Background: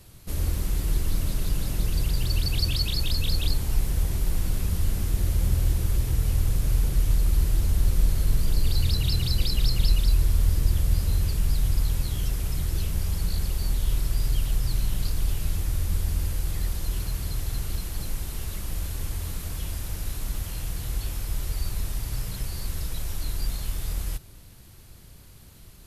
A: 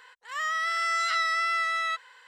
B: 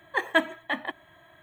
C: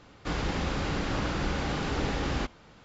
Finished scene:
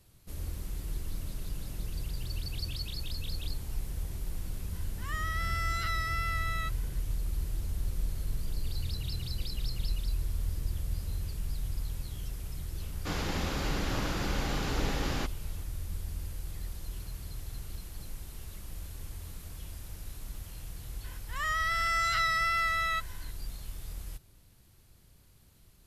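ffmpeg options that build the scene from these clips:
-filter_complex "[1:a]asplit=2[a][b];[0:a]volume=-11.5dB[c];[3:a]highshelf=f=5.5k:g=9.5[d];[a]atrim=end=2.27,asetpts=PTS-STARTPTS,volume=-8dB,afade=t=in:d=0.004:c=hsin,afade=t=out:st=2.266:d=0.004:c=hsin,adelay=208593S[e];[d]atrim=end=2.84,asetpts=PTS-STARTPTS,volume=-3.5dB,afade=t=in:d=0.004:c=hsin,afade=t=out:st=2.836:d=0.004:c=hsin,adelay=12800[f];[b]atrim=end=2.27,asetpts=PTS-STARTPTS,volume=-2dB,afade=t=in:d=0.004:c=hsin,afade=t=out:st=2.266:d=0.004:c=hsin,adelay=21040[g];[c][e][f][g]amix=inputs=4:normalize=0"

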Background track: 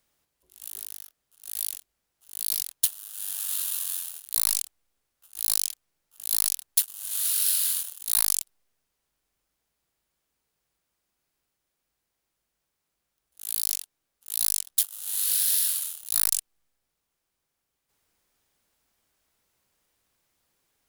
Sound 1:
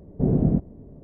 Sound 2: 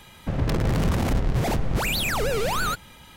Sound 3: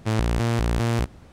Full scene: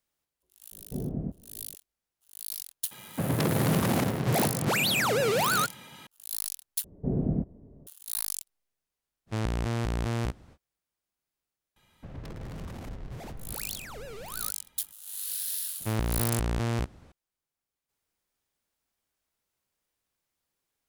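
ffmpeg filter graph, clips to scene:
-filter_complex "[1:a]asplit=2[a][b];[2:a]asplit=2[c][d];[3:a]asplit=2[e][f];[0:a]volume=-9.5dB[g];[c]highpass=f=120:w=0.5412,highpass=f=120:w=1.3066[h];[g]asplit=2[i][j];[i]atrim=end=6.844[k];[b]atrim=end=1.03,asetpts=PTS-STARTPTS,volume=-7.5dB[l];[j]atrim=start=7.866[m];[a]atrim=end=1.03,asetpts=PTS-STARTPTS,volume=-13dB,afade=t=in:d=0.004:c=hsin,afade=t=out:st=1.026:d=0.004:c=hsin,adelay=720[n];[h]atrim=end=3.16,asetpts=PTS-STARTPTS,afade=t=in:d=0.004:c=hsin,afade=t=out:st=3.156:d=0.004:c=hsin,adelay=2910[o];[e]atrim=end=1.32,asetpts=PTS-STARTPTS,volume=-7dB,afade=t=in:d=0.05,afade=t=out:st=1.27:d=0.05,adelay=9260[p];[d]atrim=end=3.16,asetpts=PTS-STARTPTS,volume=-17.5dB,afade=t=in:d=0.004:c=hsin,afade=t=out:st=3.156:d=0.004:c=hsin,adelay=11760[q];[f]atrim=end=1.32,asetpts=PTS-STARTPTS,volume=-6dB,afade=t=in:d=0.004:c=hsin,afade=t=out:st=1.316:d=0.004:c=hsin,adelay=15800[r];[k][l]acrossfade=d=0.004:c1=hsin:c2=hsin[s];[s][m]acrossfade=d=0.004:c1=hsin:c2=hsin[t];[t][n][o][p][q][r]amix=inputs=6:normalize=0"

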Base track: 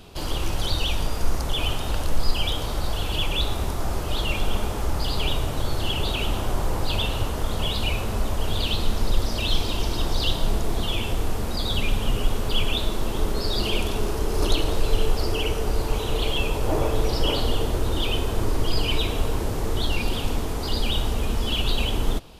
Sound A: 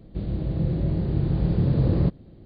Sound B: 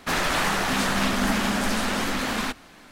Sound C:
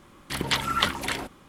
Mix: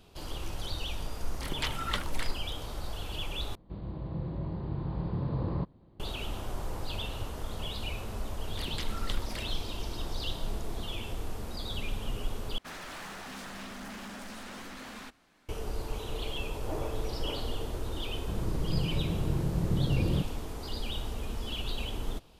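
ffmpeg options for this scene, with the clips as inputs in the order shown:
-filter_complex "[3:a]asplit=2[a][b];[1:a]asplit=2[c][d];[0:a]volume=-11.5dB[e];[c]equalizer=f=1k:w=2:g=15[f];[b]acrossover=split=330|3000[g][h][i];[h]acompressor=threshold=-28dB:ratio=6:attack=3.2:release=140:knee=2.83:detection=peak[j];[g][j][i]amix=inputs=3:normalize=0[k];[2:a]asoftclip=type=hard:threshold=-22dB[l];[e]asplit=3[m][n][o];[m]atrim=end=3.554[p];[f]atrim=end=2.45,asetpts=PTS-STARTPTS,volume=-11.5dB[q];[n]atrim=start=5.996:end=12.584[r];[l]atrim=end=2.91,asetpts=PTS-STARTPTS,volume=-17dB[s];[o]atrim=start=15.486[t];[a]atrim=end=1.48,asetpts=PTS-STARTPTS,volume=-10dB,afade=t=in:d=0.004:c=hsin,afade=t=out:st=1.476:d=0.004:c=hsin,adelay=1110[u];[k]atrim=end=1.48,asetpts=PTS-STARTPTS,volume=-13dB,afade=t=in:d=0.004:c=hsin,afade=t=out:st=1.476:d=0.004:c=hsin,adelay=8270[v];[d]atrim=end=2.45,asetpts=PTS-STARTPTS,volume=-7.5dB,afade=t=in:d=0.004:c=hsin,afade=t=out:st=2.446:d=0.004:c=hsin,adelay=18130[w];[p][q]acrossfade=d=0.004:c1=hsin:c2=hsin[x];[x][r]acrossfade=d=0.004:c1=hsin:c2=hsin[y];[y][s]acrossfade=d=0.004:c1=hsin:c2=hsin[z];[z][t]acrossfade=d=0.004:c1=hsin:c2=hsin[aa];[aa][u][v][w]amix=inputs=4:normalize=0"

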